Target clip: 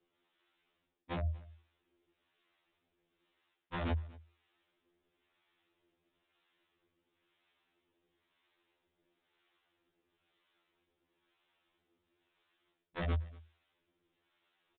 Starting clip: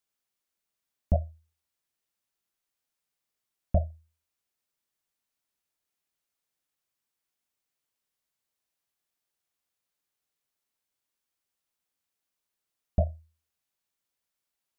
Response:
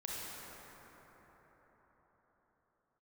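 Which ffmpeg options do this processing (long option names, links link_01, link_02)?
-filter_complex "[0:a]afftfilt=real='re*lt(hypot(re,im),0.2)':imag='im*lt(hypot(re,im),0.2)':win_size=1024:overlap=0.75,equalizer=frequency=350:width=5.1:gain=13,areverse,acompressor=threshold=-47dB:ratio=10,areverse,acrossover=split=620[link_01][link_02];[link_01]aeval=exprs='val(0)*(1-0.7/2+0.7/2*cos(2*PI*1*n/s))':channel_layout=same[link_03];[link_02]aeval=exprs='val(0)*(1-0.7/2-0.7/2*cos(2*PI*1*n/s))':channel_layout=same[link_04];[link_03][link_04]amix=inputs=2:normalize=0,aeval=exprs='(mod(188*val(0)+1,2)-1)/188':channel_layout=same,asplit=2[link_05][link_06];[link_06]aecho=0:1:237:0.0708[link_07];[link_05][link_07]amix=inputs=2:normalize=0,aresample=8000,aresample=44100,afftfilt=real='re*2*eq(mod(b,4),0)':imag='im*2*eq(mod(b,4),0)':win_size=2048:overlap=0.75,volume=17.5dB"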